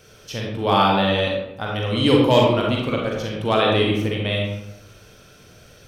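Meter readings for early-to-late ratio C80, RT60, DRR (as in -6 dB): 3.5 dB, 0.95 s, -2.0 dB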